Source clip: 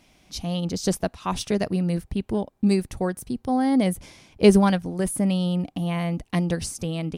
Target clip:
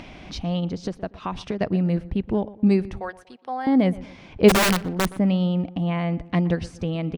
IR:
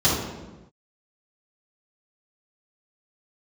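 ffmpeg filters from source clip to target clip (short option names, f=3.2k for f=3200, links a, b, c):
-filter_complex "[0:a]asettb=1/sr,asplit=3[a][b][c];[a]atrim=end=0.644[d];[b]atrim=start=0.64:end=1.61,asetpts=PTS-STARTPTS,afade=t=in:d=0.004:c=qsin,afade=t=out:st=0.966:d=0.004:c=qsin,acompressor=threshold=-27dB:ratio=6[e];[c]atrim=start=1.606[f];[d][e]acrossfade=d=0.004:c1=hsin:c2=qsin[g];[g][f]acrossfade=d=0.004:c1=qsin:c2=hsin,lowpass=2.8k,acompressor=mode=upward:threshold=-30dB:ratio=2.5,asettb=1/sr,asplit=3[h][i][j];[h]atrim=end=3.004[k];[i]atrim=start=3:end=3.67,asetpts=PTS-STARTPTS,afade=t=in:d=0.004:c=qsin,afade=t=out:st=0.666:d=0.004:c=qsin,highpass=800[l];[j]atrim=start=3.666[m];[k][l]acrossfade=d=0.004:c1=hsin:c2=qsin[n];[n][m]acrossfade=d=0.004:c1=qsin:c2=hsin,asplit=3[o][p][q];[o]afade=t=out:st=4.48:d=0.02[r];[p]aeval=exprs='(mod(6.31*val(0)+1,2)-1)/6.31':c=same,afade=t=in:st=4.48:d=0.02,afade=t=out:st=5.08:d=0.02[s];[q]afade=t=in:st=5.08:d=0.02[t];[r][s][t]amix=inputs=3:normalize=0,asplit=2[u][v];[v]adelay=120,lowpass=f=2.1k:p=1,volume=-18dB,asplit=2[w][x];[x]adelay=120,lowpass=f=2.1k:p=1,volume=0.4,asplit=2[y][z];[z]adelay=120,lowpass=f=2.1k:p=1,volume=0.4[aa];[u][w][y][aa]amix=inputs=4:normalize=0,volume=2dB"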